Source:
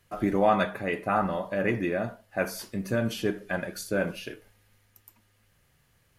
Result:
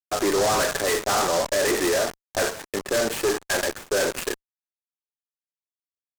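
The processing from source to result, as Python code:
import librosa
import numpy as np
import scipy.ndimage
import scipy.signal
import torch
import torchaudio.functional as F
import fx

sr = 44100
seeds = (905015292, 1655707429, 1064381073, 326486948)

y = fx.cabinet(x, sr, low_hz=360.0, low_slope=24, high_hz=10000.0, hz=(400.0, 1800.0, 2600.0, 4300.0, 8400.0), db=(5, 8, 5, -7, 8))
y = fx.fuzz(y, sr, gain_db=42.0, gate_db=-38.0)
y = fx.air_absorb(y, sr, metres=350.0)
y = fx.noise_mod_delay(y, sr, seeds[0], noise_hz=5300.0, depth_ms=0.074)
y = y * librosa.db_to_amplitude(-4.5)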